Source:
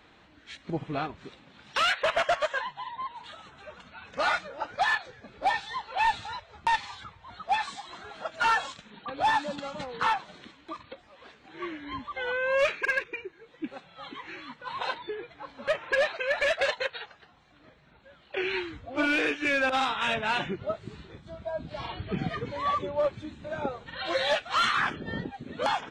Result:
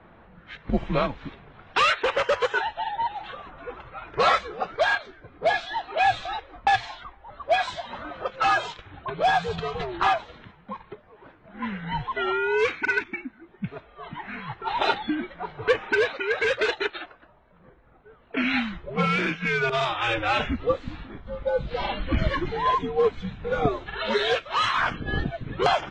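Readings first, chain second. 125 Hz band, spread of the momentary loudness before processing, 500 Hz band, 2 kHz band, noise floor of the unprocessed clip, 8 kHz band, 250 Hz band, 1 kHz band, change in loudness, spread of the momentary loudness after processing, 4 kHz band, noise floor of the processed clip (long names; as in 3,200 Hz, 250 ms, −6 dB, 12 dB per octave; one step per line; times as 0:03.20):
+8.5 dB, 19 LU, +5.0 dB, +3.0 dB, −58 dBFS, 0.0 dB, +5.5 dB, +4.0 dB, +3.5 dB, 16 LU, +3.0 dB, −55 dBFS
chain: speech leveller within 4 dB 0.5 s
mains-hum notches 50/100/150/200 Hz
low-pass that shuts in the quiet parts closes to 1,300 Hz, open at −24 dBFS
frequency shifter −120 Hz
low-pass filter 6,800 Hz 12 dB per octave
level +5 dB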